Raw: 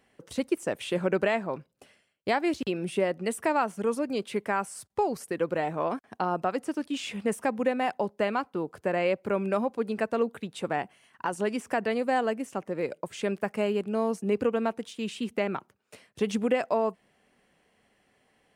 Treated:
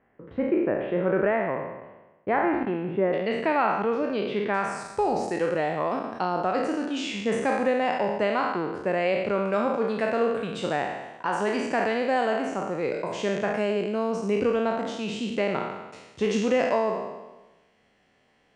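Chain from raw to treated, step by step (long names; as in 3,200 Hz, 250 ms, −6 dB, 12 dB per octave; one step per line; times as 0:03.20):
peak hold with a decay on every bin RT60 1.14 s
low-pass filter 1,900 Hz 24 dB per octave, from 0:03.13 3,800 Hz, from 0:04.54 7,100 Hz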